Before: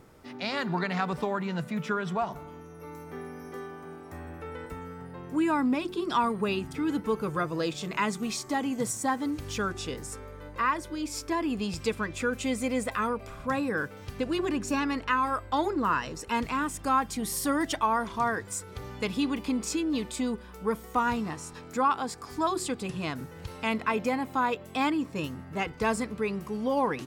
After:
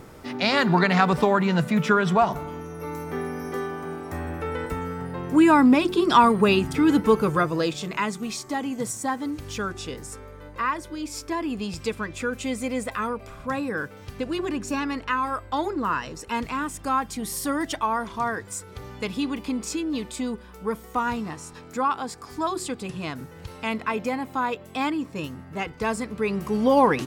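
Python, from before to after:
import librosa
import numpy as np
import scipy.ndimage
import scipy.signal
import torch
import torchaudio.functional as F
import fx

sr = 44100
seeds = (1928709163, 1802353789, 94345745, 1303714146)

y = fx.gain(x, sr, db=fx.line((7.11, 10.0), (8.12, 1.0), (26.01, 1.0), (26.56, 9.0)))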